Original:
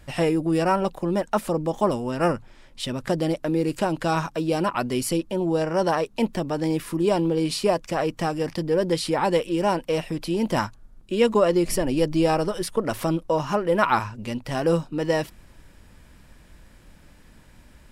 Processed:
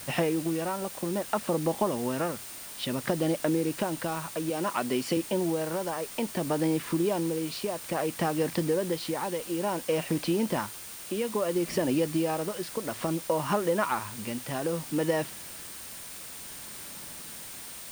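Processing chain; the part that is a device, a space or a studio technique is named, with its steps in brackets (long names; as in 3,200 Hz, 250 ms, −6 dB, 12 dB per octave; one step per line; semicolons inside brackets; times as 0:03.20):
medium wave at night (band-pass filter 130–4,100 Hz; downward compressor, threshold −26 dBFS, peak gain reduction 11.5 dB; amplitude tremolo 0.59 Hz, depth 52%; steady tone 9,000 Hz −50 dBFS; white noise bed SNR 13 dB)
0:04.50–0:05.17: Bessel high-pass filter 170 Hz
level +3 dB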